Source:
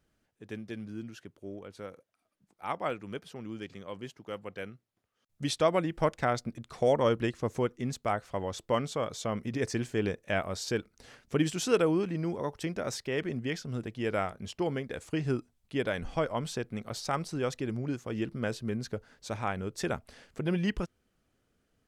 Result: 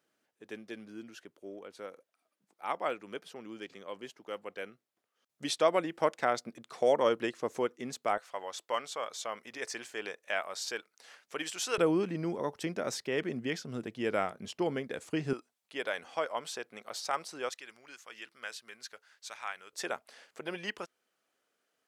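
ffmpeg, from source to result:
ffmpeg -i in.wav -af "asetnsamples=nb_out_samples=441:pad=0,asendcmd='8.18 highpass f 740;11.78 highpass f 190;15.33 highpass f 590;17.49 highpass f 1400;19.73 highpass f 550',highpass=330" out.wav

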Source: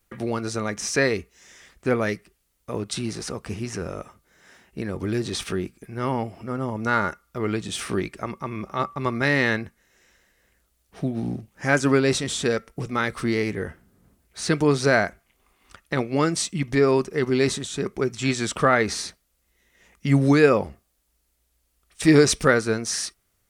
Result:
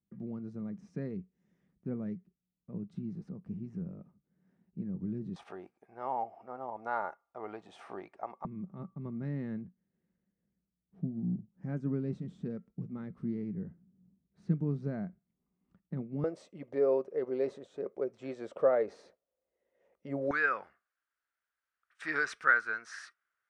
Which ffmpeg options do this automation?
ffmpeg -i in.wav -af "asetnsamples=nb_out_samples=441:pad=0,asendcmd='5.36 bandpass f 770;8.45 bandpass f 180;16.24 bandpass f 540;20.31 bandpass f 1500',bandpass=frequency=180:width_type=q:width=5:csg=0" out.wav

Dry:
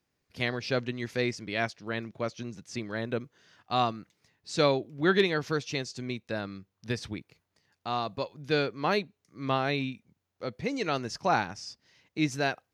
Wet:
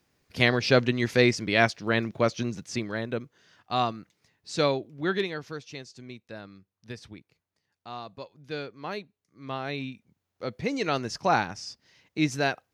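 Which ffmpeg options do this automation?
ffmpeg -i in.wav -af "volume=19dB,afade=type=out:start_time=2.43:duration=0.63:silence=0.398107,afade=type=out:start_time=4.53:duration=0.99:silence=0.375837,afade=type=in:start_time=9.43:duration=1.14:silence=0.298538" out.wav

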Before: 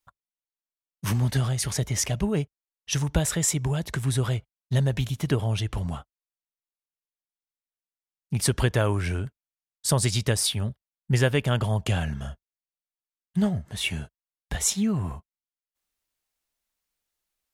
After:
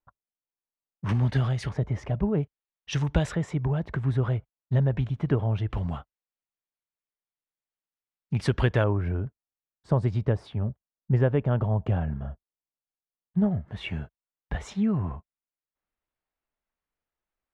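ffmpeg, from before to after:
ffmpeg -i in.wav -af "asetnsamples=nb_out_samples=441:pad=0,asendcmd='1.09 lowpass f 2700;1.69 lowpass f 1200;2.43 lowpass f 3100;3.32 lowpass f 1500;5.7 lowpass f 2800;8.84 lowpass f 1000;13.51 lowpass f 1800',lowpass=1200" out.wav

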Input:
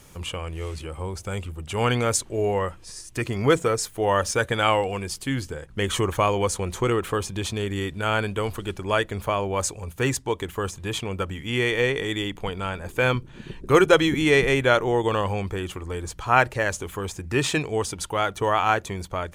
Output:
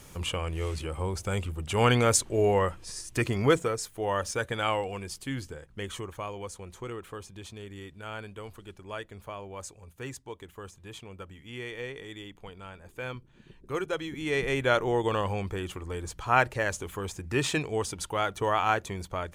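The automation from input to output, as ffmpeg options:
ffmpeg -i in.wav -af "volume=11dB,afade=type=out:start_time=3.21:duration=0.52:silence=0.421697,afade=type=out:start_time=5.47:duration=0.61:silence=0.398107,afade=type=in:start_time=14.12:duration=0.68:silence=0.281838" out.wav

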